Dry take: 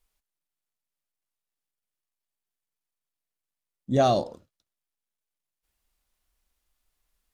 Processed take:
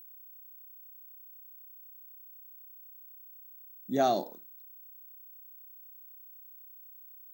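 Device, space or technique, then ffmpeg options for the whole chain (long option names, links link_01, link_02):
old television with a line whistle: -af "highpass=frequency=200:width=0.5412,highpass=frequency=200:width=1.3066,equalizer=frequency=230:width_type=q:width=4:gain=-5,equalizer=frequency=530:width_type=q:width=4:gain=-10,equalizer=frequency=1100:width_type=q:width=4:gain=-7,equalizer=frequency=2900:width_type=q:width=4:gain=-10,equalizer=frequency=5000:width_type=q:width=4:gain=-7,lowpass=frequency=7800:width=0.5412,lowpass=frequency=7800:width=1.3066,aeval=exprs='val(0)+0.00447*sin(2*PI*15734*n/s)':channel_layout=same,volume=-1.5dB"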